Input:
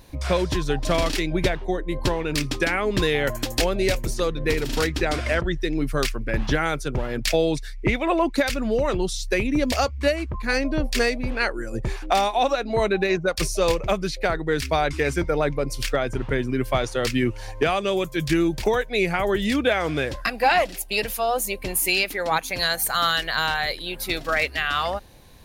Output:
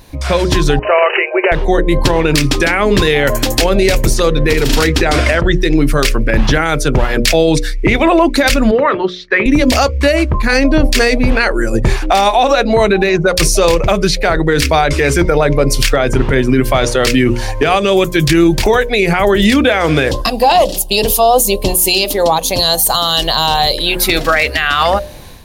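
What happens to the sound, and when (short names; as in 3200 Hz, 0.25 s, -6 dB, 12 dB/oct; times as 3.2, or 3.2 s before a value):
0.79–1.52 brick-wall FIR band-pass 360–3000 Hz
8.71–9.46 speaker cabinet 320–2900 Hz, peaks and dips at 370 Hz -3 dB, 530 Hz -5 dB, 760 Hz -6 dB, 1200 Hz +5 dB, 1800 Hz +5 dB, 2700 Hz -8 dB
20.11–23.78 band shelf 1800 Hz -15.5 dB 1.1 oct
whole clip: notches 60/120/180/240/300/360/420/480/540/600 Hz; AGC; maximiser +9.5 dB; gain -1 dB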